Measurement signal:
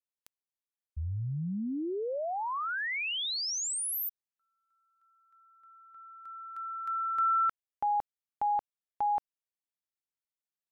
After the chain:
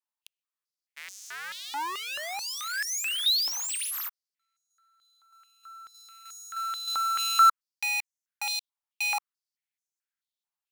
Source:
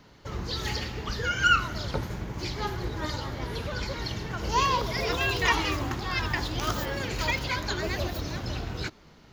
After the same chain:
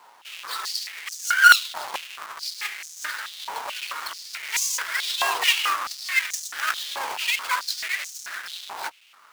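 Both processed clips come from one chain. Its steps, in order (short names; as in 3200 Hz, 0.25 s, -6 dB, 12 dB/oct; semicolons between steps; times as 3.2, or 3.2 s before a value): half-waves squared off; stepped high-pass 4.6 Hz 900–6300 Hz; gain -2 dB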